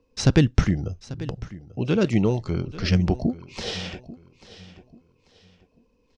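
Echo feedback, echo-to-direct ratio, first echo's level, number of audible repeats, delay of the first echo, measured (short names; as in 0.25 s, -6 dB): 30%, -16.5 dB, -17.0 dB, 2, 0.84 s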